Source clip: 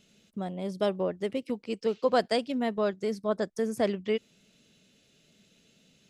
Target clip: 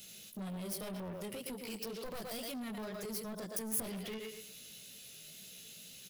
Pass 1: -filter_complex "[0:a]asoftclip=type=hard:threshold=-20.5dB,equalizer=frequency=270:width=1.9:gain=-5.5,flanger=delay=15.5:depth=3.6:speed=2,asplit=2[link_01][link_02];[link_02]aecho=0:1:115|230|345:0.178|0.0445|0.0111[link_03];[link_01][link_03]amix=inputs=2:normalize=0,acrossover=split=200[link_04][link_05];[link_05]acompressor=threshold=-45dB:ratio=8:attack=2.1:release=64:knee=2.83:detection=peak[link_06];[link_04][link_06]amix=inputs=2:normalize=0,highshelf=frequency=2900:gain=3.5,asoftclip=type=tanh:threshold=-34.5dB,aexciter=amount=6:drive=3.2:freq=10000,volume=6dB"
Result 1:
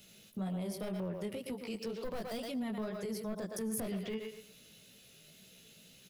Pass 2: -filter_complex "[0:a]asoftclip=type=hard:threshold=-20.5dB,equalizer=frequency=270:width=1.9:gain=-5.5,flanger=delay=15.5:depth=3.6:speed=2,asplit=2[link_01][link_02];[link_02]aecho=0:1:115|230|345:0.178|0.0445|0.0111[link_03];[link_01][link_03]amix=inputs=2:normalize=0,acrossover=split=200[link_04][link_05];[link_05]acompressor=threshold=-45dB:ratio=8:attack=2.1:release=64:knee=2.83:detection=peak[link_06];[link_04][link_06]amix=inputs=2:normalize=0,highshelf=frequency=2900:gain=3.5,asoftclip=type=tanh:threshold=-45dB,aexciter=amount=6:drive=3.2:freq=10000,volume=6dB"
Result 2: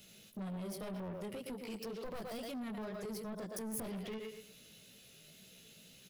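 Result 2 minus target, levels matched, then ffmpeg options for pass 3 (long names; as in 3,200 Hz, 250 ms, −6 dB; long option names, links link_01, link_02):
8,000 Hz band −6.0 dB
-filter_complex "[0:a]asoftclip=type=hard:threshold=-20.5dB,equalizer=frequency=270:width=1.9:gain=-5.5,flanger=delay=15.5:depth=3.6:speed=2,asplit=2[link_01][link_02];[link_02]aecho=0:1:115|230|345:0.178|0.0445|0.0111[link_03];[link_01][link_03]amix=inputs=2:normalize=0,acrossover=split=200[link_04][link_05];[link_05]acompressor=threshold=-45dB:ratio=8:attack=2.1:release=64:knee=2.83:detection=peak[link_06];[link_04][link_06]amix=inputs=2:normalize=0,highshelf=frequency=2900:gain=14,asoftclip=type=tanh:threshold=-45dB,aexciter=amount=6:drive=3.2:freq=10000,volume=6dB"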